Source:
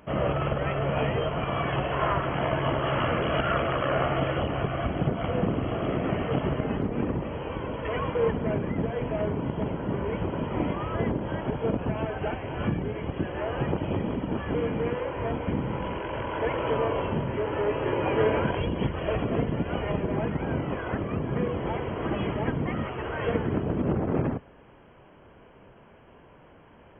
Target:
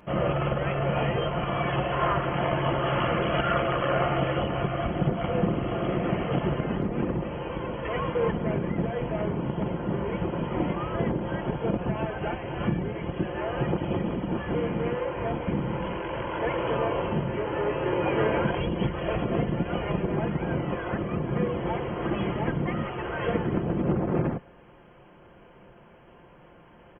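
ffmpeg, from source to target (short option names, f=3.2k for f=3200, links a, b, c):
-af "aecho=1:1:5.7:0.39"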